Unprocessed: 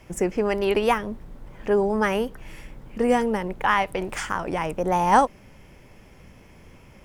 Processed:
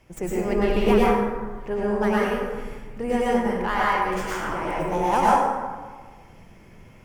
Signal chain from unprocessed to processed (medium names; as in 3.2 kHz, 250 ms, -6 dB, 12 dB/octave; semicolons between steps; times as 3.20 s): tracing distortion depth 0.058 ms; 0.45–0.99 s: bass shelf 290 Hz +11 dB; plate-style reverb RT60 1.4 s, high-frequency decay 0.5×, pre-delay 90 ms, DRR -6.5 dB; trim -7.5 dB